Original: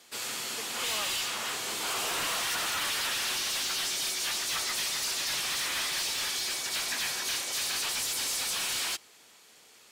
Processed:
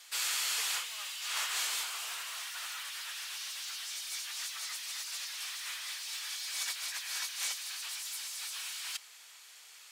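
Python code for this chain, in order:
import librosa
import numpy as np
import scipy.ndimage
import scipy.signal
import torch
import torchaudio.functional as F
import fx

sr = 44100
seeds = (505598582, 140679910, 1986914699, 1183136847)

y = scipy.signal.sosfilt(scipy.signal.butter(2, 1200.0, 'highpass', fs=sr, output='sos'), x)
y = fx.over_compress(y, sr, threshold_db=-36.0, ratio=-0.5)
y = y * 10.0 ** (-1.5 / 20.0)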